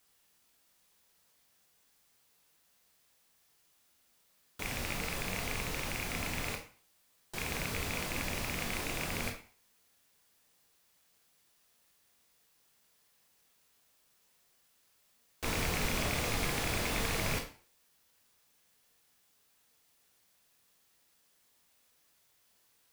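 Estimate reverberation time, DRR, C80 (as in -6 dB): 0.40 s, 2.5 dB, 12.5 dB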